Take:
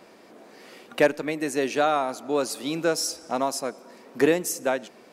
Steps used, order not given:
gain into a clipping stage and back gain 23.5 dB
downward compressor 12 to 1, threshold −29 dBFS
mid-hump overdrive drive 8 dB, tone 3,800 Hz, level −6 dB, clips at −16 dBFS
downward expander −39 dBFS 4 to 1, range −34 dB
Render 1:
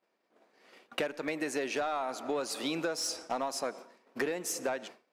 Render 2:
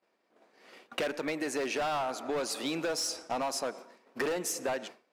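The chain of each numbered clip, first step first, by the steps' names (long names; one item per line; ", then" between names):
downward expander, then mid-hump overdrive, then downward compressor, then gain into a clipping stage and back
mid-hump overdrive, then downward expander, then gain into a clipping stage and back, then downward compressor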